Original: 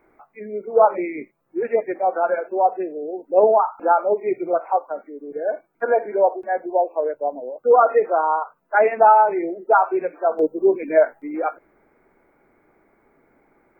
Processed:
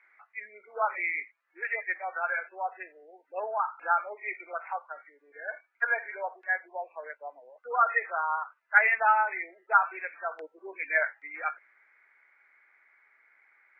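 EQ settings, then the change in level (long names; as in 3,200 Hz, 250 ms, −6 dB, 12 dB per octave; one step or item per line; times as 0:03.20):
high-pass with resonance 1,900 Hz, resonance Q 3.1
high-frequency loss of the air 130 metres
0.0 dB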